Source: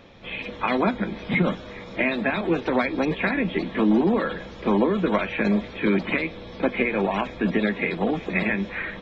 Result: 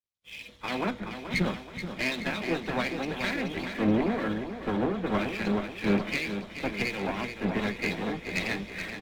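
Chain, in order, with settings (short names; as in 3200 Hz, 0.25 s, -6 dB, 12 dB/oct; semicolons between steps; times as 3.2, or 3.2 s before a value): HPF 46 Hz; high shelf 2900 Hz +9.5 dB; crossover distortion -45.5 dBFS; low shelf 97 Hz +9 dB; one-sided clip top -27 dBFS; on a send: feedback echo 0.429 s, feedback 55%, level -5 dB; on the sum: three-band expander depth 100%; gain -7 dB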